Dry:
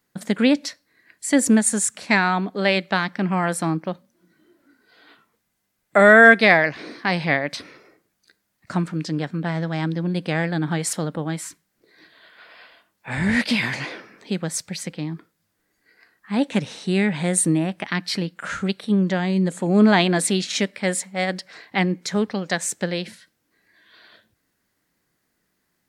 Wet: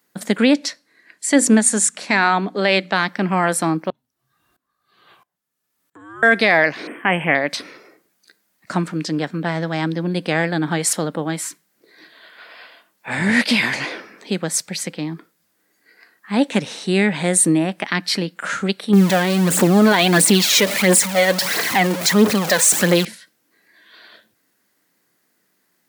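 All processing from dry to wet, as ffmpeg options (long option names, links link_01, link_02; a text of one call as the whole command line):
ffmpeg -i in.wav -filter_complex "[0:a]asettb=1/sr,asplit=3[link_01][link_02][link_03];[link_01]atrim=end=0.564[link_04];[link_02]atrim=start=0.56:end=2.93,asetpts=PTS-STARTPTS,afade=type=in:duration=0.004:curve=qsin,afade=type=out:start_time=2.366:duration=0.004:curve=qsin,lowpass=9500,bandreject=frequency=60:width_type=h:width=6,bandreject=frequency=120:width_type=h:width=6,bandreject=frequency=180:width_type=h:width=6,bandreject=frequency=240:width_type=h:width=6,bandreject=frequency=300:width_type=h:width=6[link_05];[link_03]atrim=start=2.926[link_06];[link_04][link_05]acrossfade=duration=0.004:curve1=hsin:curve2=qsin[link_07];[link_07][link_06]acrossfade=duration=0.004:curve1=qsin:curve2=hsin,asettb=1/sr,asplit=3[link_08][link_09][link_10];[link_08]atrim=end=3.904[link_11];[link_09]atrim=start=3.9:end=6.23,asetpts=PTS-STARTPTS,afade=type=in:duration=0.004:curve=qsin,afade=type=out:start_time=2.326:duration=0.004:curve=qsin,acompressor=threshold=-34dB:ratio=2.5:attack=3.2:release=140:knee=1:detection=peak,afreqshift=-310,aeval=exprs='val(0)*pow(10,-21*if(lt(mod(-1.5*n/s,1),2*abs(-1.5)/1000),1-mod(-1.5*n/s,1)/(2*abs(-1.5)/1000),(mod(-1.5*n/s,1)-2*abs(-1.5)/1000)/(1-2*abs(-1.5)/1000))/20)':channel_layout=same[link_12];[link_10]atrim=start=6.226[link_13];[link_11][link_12]acrossfade=duration=0.004:curve1=hsin:curve2=qsin[link_14];[link_14][link_13]acrossfade=duration=0.004:curve1=qsin:curve2=hsin,asettb=1/sr,asplit=3[link_15][link_16][link_17];[link_15]atrim=end=6.874[link_18];[link_16]atrim=start=6.87:end=7.35,asetpts=PTS-STARTPTS,afade=type=in:duration=0.004:curve=qsin,afade=type=out:start_time=0.476:duration=0.004:curve=qsin,asuperstop=centerf=5000:order=20:qfactor=1.1,equalizer=frequency=3800:width=3.9:gain=9[link_19];[link_17]atrim=start=7.346[link_20];[link_18][link_19]acrossfade=duration=0.004:curve1=hsin:curve2=qsin[link_21];[link_21][link_20]acrossfade=duration=0.004:curve1=qsin:curve2=hsin,asettb=1/sr,asplit=3[link_22][link_23][link_24];[link_22]atrim=end=18.934[link_25];[link_23]atrim=start=18.93:end=23.05,asetpts=PTS-STARTPTS,afade=type=in:duration=0.004:curve=qsin,afade=type=out:start_time=4.116:duration=0.004:curve=qsin,aeval=exprs='val(0)+0.5*0.0708*sgn(val(0))':channel_layout=same,aphaser=in_gain=1:out_gain=1:delay=2.2:decay=0.54:speed=1.5:type=triangular[link_26];[link_24]atrim=start=23.046[link_27];[link_25][link_26]acrossfade=duration=0.004:curve1=hsin:curve2=qsin[link_28];[link_28][link_27]acrossfade=duration=0.004:curve1=qsin:curve2=hsin,highpass=200,highshelf=frequency=10000:gain=5,alimiter=level_in=7.5dB:limit=-1dB:release=50:level=0:latency=1,volume=-2.5dB" out.wav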